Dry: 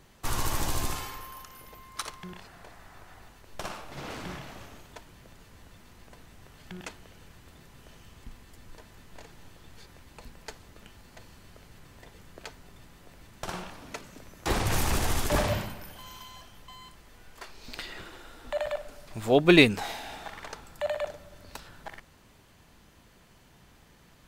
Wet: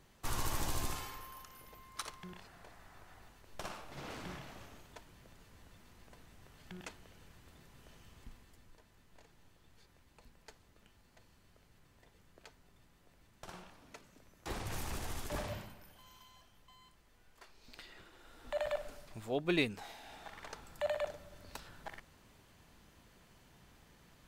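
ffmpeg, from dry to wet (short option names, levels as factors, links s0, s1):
-af "volume=4.73,afade=t=out:st=8.22:d=0.56:silence=0.446684,afade=t=in:st=18.13:d=0.74:silence=0.281838,afade=t=out:st=18.87:d=0.4:silence=0.266073,afade=t=in:st=19.96:d=0.78:silence=0.334965"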